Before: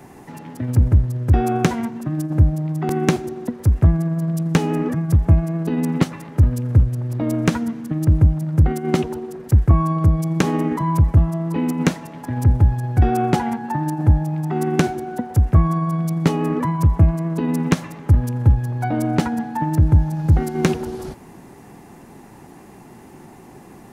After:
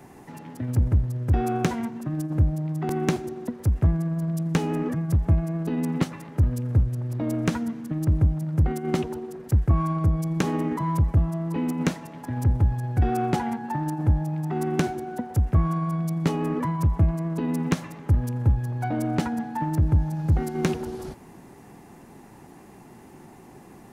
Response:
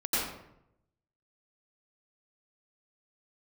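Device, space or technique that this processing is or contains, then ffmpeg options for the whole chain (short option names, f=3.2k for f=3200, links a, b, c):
parallel distortion: -filter_complex "[0:a]asplit=2[a][b];[b]asoftclip=type=hard:threshold=-20dB,volume=-8.5dB[c];[a][c]amix=inputs=2:normalize=0,volume=-7.5dB"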